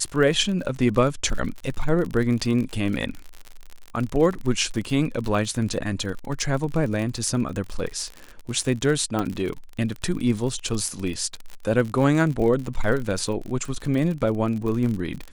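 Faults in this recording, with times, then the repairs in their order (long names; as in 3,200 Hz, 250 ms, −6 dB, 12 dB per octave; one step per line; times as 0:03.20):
surface crackle 49 per second −28 dBFS
0:09.19: click −13 dBFS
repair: click removal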